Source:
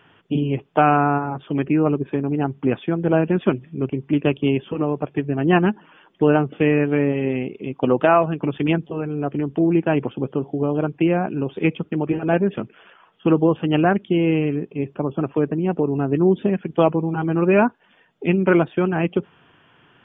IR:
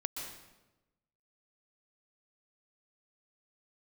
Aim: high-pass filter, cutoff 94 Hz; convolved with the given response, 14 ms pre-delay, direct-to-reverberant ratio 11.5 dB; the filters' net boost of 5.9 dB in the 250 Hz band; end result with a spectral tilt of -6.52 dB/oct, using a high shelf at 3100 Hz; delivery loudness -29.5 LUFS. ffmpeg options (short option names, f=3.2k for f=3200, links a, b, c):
-filter_complex "[0:a]highpass=94,equalizer=f=250:t=o:g=8.5,highshelf=f=3.1k:g=-6,asplit=2[a][b];[1:a]atrim=start_sample=2205,adelay=14[c];[b][c]afir=irnorm=-1:irlink=0,volume=-13dB[d];[a][d]amix=inputs=2:normalize=0,volume=-13dB"